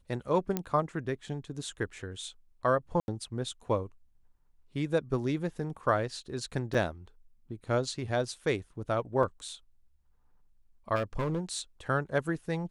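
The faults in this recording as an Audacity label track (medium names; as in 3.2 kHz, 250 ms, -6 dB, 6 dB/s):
0.570000	0.570000	pop -15 dBFS
3.000000	3.080000	dropout 81 ms
6.740000	6.750000	dropout 5.3 ms
9.230000	9.230000	dropout 3.5 ms
10.950000	11.590000	clipped -26.5 dBFS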